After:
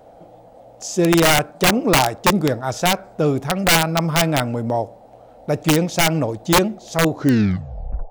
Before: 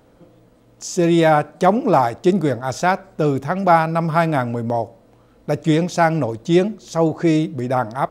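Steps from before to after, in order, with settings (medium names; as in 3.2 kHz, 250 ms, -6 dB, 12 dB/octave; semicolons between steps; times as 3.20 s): tape stop on the ending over 1.00 s; band noise 470–810 Hz -46 dBFS; integer overflow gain 8 dB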